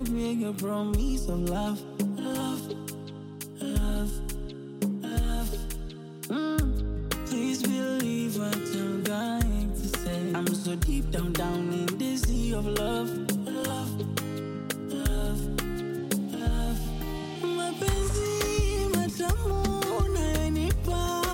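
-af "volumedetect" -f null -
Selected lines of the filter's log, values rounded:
mean_volume: -28.5 dB
max_volume: -12.5 dB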